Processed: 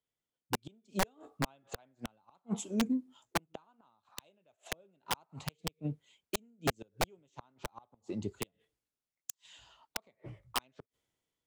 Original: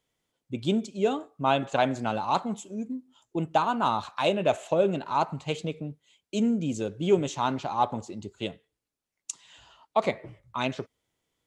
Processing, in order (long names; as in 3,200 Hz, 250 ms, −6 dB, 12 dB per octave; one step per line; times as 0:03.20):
gate with flip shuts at −20 dBFS, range −39 dB
wrap-around overflow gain 25 dB
multiband upward and downward expander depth 40%
level +1 dB